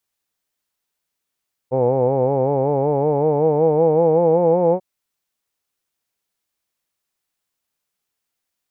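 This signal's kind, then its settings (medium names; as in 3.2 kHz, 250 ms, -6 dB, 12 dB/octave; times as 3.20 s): formant vowel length 3.09 s, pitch 125 Hz, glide +6 st, F1 490 Hz, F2 850 Hz, F3 2.3 kHz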